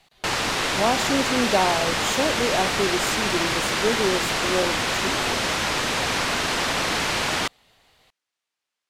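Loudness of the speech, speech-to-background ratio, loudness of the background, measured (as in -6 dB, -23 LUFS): -26.0 LUFS, -3.5 dB, -22.5 LUFS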